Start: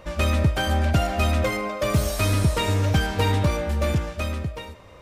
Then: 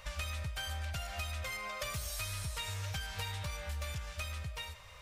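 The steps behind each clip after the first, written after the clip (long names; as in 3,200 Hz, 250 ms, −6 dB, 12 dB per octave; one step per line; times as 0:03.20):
guitar amp tone stack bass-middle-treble 10-0-10
downward compressor 6 to 1, threshold −40 dBFS, peak gain reduction 14 dB
level +3 dB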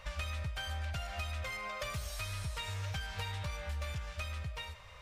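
high-shelf EQ 5,900 Hz −10 dB
level +1 dB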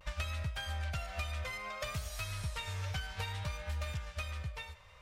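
pitch vibrato 0.6 Hz 49 cents
expander for the loud parts 1.5 to 1, over −48 dBFS
level +2 dB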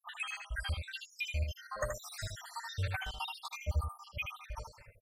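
time-frequency cells dropped at random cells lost 82%
on a send: single-tap delay 78 ms −5.5 dB
on the sum: level +6 dB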